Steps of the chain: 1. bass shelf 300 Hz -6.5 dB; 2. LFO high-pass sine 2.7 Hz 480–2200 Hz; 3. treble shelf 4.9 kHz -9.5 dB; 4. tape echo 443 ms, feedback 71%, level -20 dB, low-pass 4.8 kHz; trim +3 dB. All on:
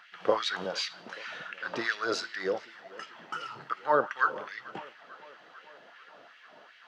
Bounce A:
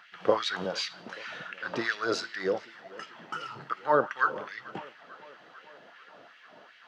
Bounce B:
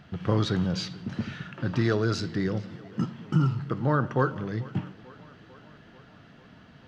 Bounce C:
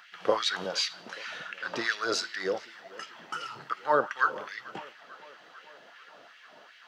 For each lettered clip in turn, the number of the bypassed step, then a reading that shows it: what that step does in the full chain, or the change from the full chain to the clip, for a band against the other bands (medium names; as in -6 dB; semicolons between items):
1, 125 Hz band +5.0 dB; 2, 125 Hz band +30.0 dB; 3, 8 kHz band +5.5 dB